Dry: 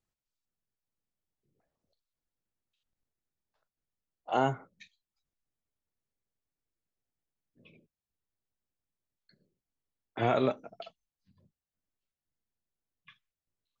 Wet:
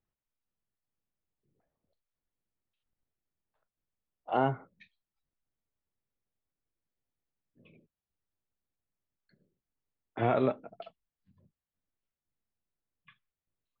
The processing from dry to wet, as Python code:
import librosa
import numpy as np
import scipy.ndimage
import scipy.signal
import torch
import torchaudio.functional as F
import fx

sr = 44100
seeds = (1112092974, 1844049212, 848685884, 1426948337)

y = fx.air_absorb(x, sr, metres=350.0)
y = y * 10.0 ** (1.0 / 20.0)